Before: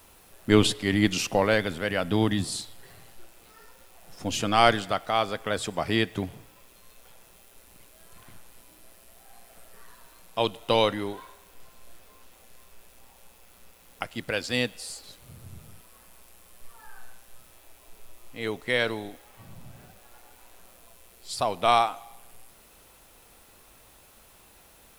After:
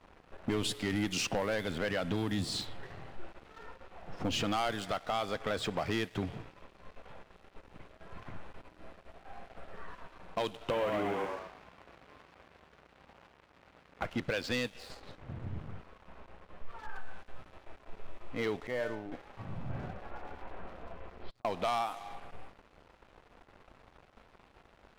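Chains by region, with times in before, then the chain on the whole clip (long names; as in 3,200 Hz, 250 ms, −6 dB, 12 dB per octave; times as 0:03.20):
0:10.70–0:14.04: variable-slope delta modulation 16 kbit/s + high-pass filter 58 Hz + echo with shifted repeats 118 ms, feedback 40%, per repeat +84 Hz, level −6 dB
0:14.78–0:16.89: high-shelf EQ 4,900 Hz −7.5 dB + highs frequency-modulated by the lows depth 0.98 ms
0:18.67–0:19.12: running median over 15 samples + tuned comb filter 300 Hz, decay 0.58 s, mix 80%
0:19.69–0:21.45: compressor whose output falls as the input rises −40 dBFS, ratio −0.5 + high-frequency loss of the air 330 metres
whole clip: low-pass that shuts in the quiet parts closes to 1,600 Hz, open at −18.5 dBFS; downward compressor 5 to 1, threshold −33 dBFS; leveller curve on the samples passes 3; level −5.5 dB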